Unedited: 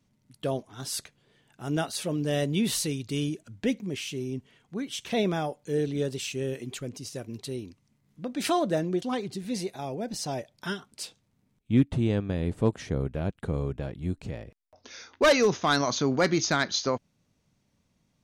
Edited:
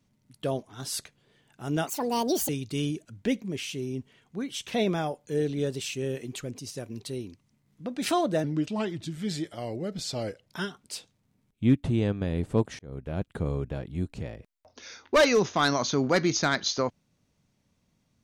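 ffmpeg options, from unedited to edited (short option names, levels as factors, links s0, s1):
-filter_complex "[0:a]asplit=6[s0][s1][s2][s3][s4][s5];[s0]atrim=end=1.874[s6];[s1]atrim=start=1.87:end=2.87,asetpts=PTS-STARTPTS,asetrate=71442,aresample=44100,atrim=end_sample=27222,asetpts=PTS-STARTPTS[s7];[s2]atrim=start=2.866:end=8.824[s8];[s3]atrim=start=8.82:end=10.54,asetpts=PTS-STARTPTS,asetrate=37485,aresample=44100[s9];[s4]atrim=start=10.536:end=12.87,asetpts=PTS-STARTPTS,afade=t=out:st=2.33:d=0.004:c=hsin[s10];[s5]atrim=start=12.87,asetpts=PTS-STARTPTS,afade=t=in:d=0.44[s11];[s6][s7]acrossfade=d=0.004:c1=hsin:c2=hsin[s12];[s12][s8]acrossfade=d=0.004:c1=hsin:c2=hsin[s13];[s13][s9]acrossfade=d=0.004:c1=hsin:c2=hsin[s14];[s10][s11]concat=n=2:v=0:a=1[s15];[s14][s15]acrossfade=d=0.004:c1=hsin:c2=hsin"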